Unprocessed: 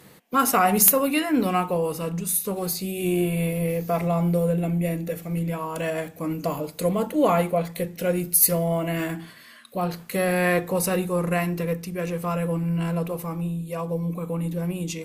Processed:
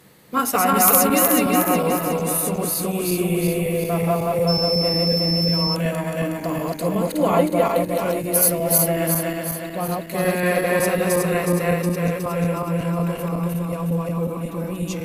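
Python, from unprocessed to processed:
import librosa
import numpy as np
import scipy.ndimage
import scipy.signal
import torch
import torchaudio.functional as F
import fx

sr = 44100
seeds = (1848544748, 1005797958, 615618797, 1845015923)

y = fx.reverse_delay_fb(x, sr, ms=183, feedback_pct=71, wet_db=0.0)
y = fx.dmg_tone(y, sr, hz=5300.0, level_db=-20.0, at=(4.47, 5.74), fade=0.02)
y = y * 10.0 ** (-1.0 / 20.0)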